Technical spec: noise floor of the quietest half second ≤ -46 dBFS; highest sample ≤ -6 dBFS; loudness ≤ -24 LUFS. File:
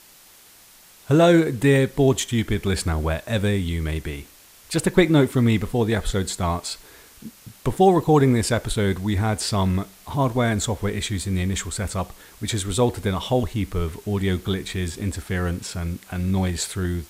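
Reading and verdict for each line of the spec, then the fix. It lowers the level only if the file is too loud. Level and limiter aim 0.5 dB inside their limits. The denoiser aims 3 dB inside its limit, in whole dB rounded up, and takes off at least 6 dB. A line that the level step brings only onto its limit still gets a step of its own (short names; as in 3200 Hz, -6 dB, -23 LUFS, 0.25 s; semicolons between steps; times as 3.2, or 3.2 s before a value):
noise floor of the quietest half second -50 dBFS: OK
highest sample -4.0 dBFS: fail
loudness -22.5 LUFS: fail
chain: gain -2 dB; limiter -6.5 dBFS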